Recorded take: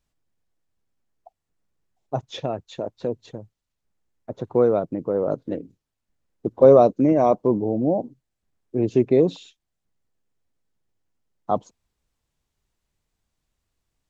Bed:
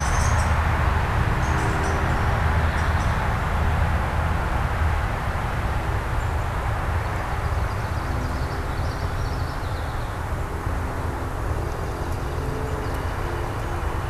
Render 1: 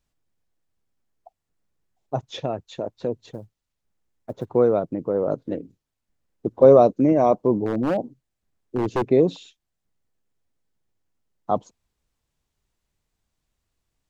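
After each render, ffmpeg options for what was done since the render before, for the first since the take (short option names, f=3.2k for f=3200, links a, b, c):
-filter_complex "[0:a]asettb=1/sr,asplit=3[a][b][c];[a]atrim=end=3.264[d];[b]atrim=start=3.26:end=4.46,asetpts=PTS-STARTPTS,afade=t=in:d=0.004:c=qsin,afade=t=out:st=1.196:d=0.004:c=qsin,acrusher=bits=9:mode=log:mix=0:aa=0.000001[e];[c]atrim=start=4.456[f];[d][e]acrossfade=d=0.004:c1=hsin:c2=qsin[g];[g][f]acrossfade=d=0.004:c1=qsin:c2=hsin,asettb=1/sr,asplit=3[h][i][j];[h]atrim=end=7.664[k];[i]atrim=start=7.66:end=9.1,asetpts=PTS-STARTPTS,afade=t=in:d=0.004:c=qsin,afade=t=out:st=1.436:d=0.004:c=qsin,aeval=exprs='0.168*(abs(mod(val(0)/0.168+3,4)-2)-1)':c=same[l];[j]atrim=start=9.096[m];[k][l]acrossfade=d=0.004:c1=hsin:c2=qsin[n];[n][m]acrossfade=d=0.004:c1=qsin:c2=hsin"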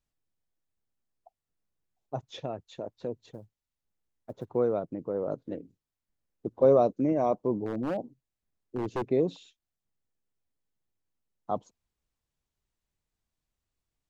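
-af "volume=-8.5dB"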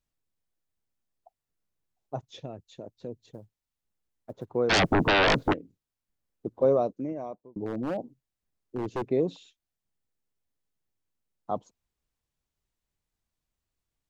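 -filter_complex "[0:a]asettb=1/sr,asplit=3[a][b][c];[a]atrim=end=2.254[d];[b]atrim=start=2.25:end=3.35,asetpts=PTS-STARTPTS,afade=t=in:d=0.004:c=qsin,afade=t=out:st=1.096:d=0.004:c=qsin,equalizer=f=1.1k:t=o:w=2.6:g=-8.5[e];[c]atrim=start=3.346[f];[d][e]acrossfade=d=0.004:c1=hsin:c2=qsin[g];[g][f]acrossfade=d=0.004:c1=qsin:c2=hsin,asplit=3[h][i][j];[h]afade=t=out:st=4.69:d=0.02[k];[i]aeval=exprs='0.126*sin(PI/2*8.91*val(0)/0.126)':c=same,afade=t=in:st=4.69:d=0.02,afade=t=out:st=5.52:d=0.02[l];[j]afade=t=in:st=5.52:d=0.02[m];[k][l][m]amix=inputs=3:normalize=0,asplit=2[n][o];[n]atrim=end=7.56,asetpts=PTS-STARTPTS,afade=t=out:st=6.47:d=1.09[p];[o]atrim=start=7.56,asetpts=PTS-STARTPTS,afade=t=in:d=0.004:c=hsin[q];[p][q]concat=n=2:v=0:a=1"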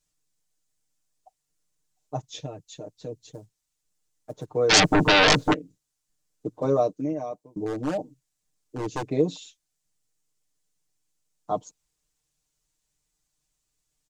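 -af "equalizer=f=7.1k:w=0.82:g=12.5,aecho=1:1:6.6:0.97"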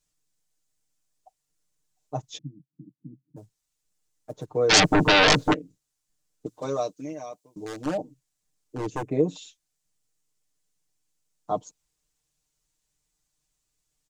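-filter_complex "[0:a]asplit=3[a][b][c];[a]afade=t=out:st=2.37:d=0.02[d];[b]asuperpass=centerf=200:order=12:qfactor=1.1,afade=t=in:st=2.37:d=0.02,afade=t=out:st=3.36:d=0.02[e];[c]afade=t=in:st=3.36:d=0.02[f];[d][e][f]amix=inputs=3:normalize=0,asettb=1/sr,asplit=3[g][h][i];[g]atrim=end=6.464[j];[h]atrim=start=6.46:end=7.86,asetpts=PTS-STARTPTS,afade=t=in:d=0.004:c=qsin,afade=t=out:st=1.396:d=0.004:c=qsin,tiltshelf=f=1.4k:g=-8.5[k];[i]atrim=start=7.856[l];[j][k]acrossfade=d=0.004:c1=hsin:c2=qsin[m];[m][l]acrossfade=d=0.004:c1=qsin:c2=hsin,asettb=1/sr,asplit=3[n][o][p];[n]atrim=end=8.904[q];[o]atrim=start=8.9:end=9.36,asetpts=PTS-STARTPTS,afade=t=in:d=0.004:c=qsin,afade=t=out:st=0.456:d=0.004:c=qsin,equalizer=f=4.4k:t=o:w=0.88:g=-12.5[r];[p]atrim=start=9.356[s];[q][r]acrossfade=d=0.004:c1=hsin:c2=qsin[t];[t][s]acrossfade=d=0.004:c1=qsin:c2=hsin"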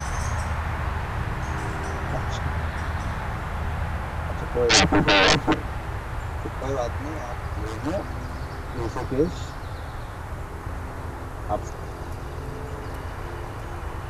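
-filter_complex "[1:a]volume=-6.5dB[a];[0:a][a]amix=inputs=2:normalize=0"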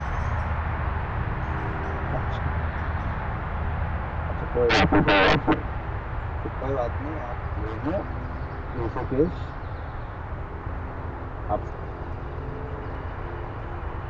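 -af "lowpass=3.3k,aemphasis=mode=reproduction:type=50fm"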